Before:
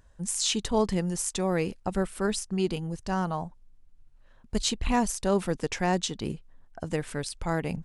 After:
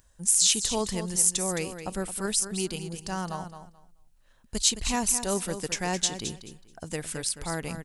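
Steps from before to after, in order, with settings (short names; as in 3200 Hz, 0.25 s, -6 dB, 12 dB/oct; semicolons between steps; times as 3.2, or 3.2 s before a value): pre-emphasis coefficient 0.8; feedback echo 0.216 s, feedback 19%, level -10 dB; gain +9 dB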